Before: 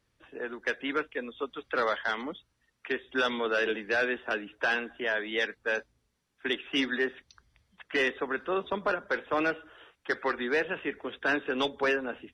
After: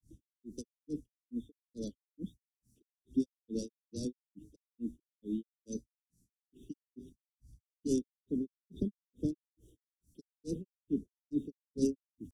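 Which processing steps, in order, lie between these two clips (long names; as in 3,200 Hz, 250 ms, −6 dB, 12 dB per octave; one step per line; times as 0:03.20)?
inverse Chebyshev band-stop filter 820–2,300 Hz, stop band 70 dB
granular cloud 219 ms, grains 2.3 per second, pitch spread up and down by 0 semitones
level +13.5 dB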